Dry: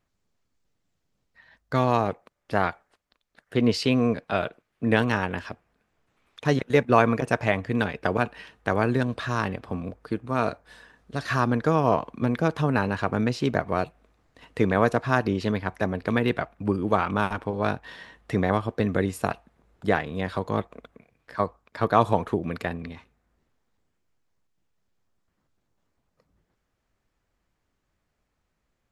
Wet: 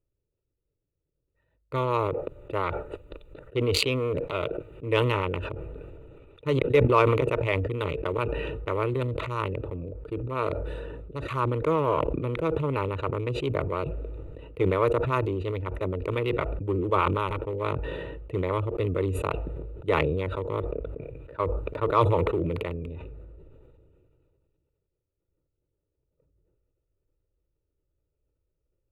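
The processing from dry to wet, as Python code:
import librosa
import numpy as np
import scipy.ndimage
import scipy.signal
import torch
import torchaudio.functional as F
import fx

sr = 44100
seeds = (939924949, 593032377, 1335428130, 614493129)

y = fx.wiener(x, sr, points=41)
y = fx.fixed_phaser(y, sr, hz=1100.0, stages=8)
y = fx.cheby_harmonics(y, sr, harmonics=(2, 4), levels_db=(-19, -24), full_scale_db=-8.0)
y = fx.sustainer(y, sr, db_per_s=23.0)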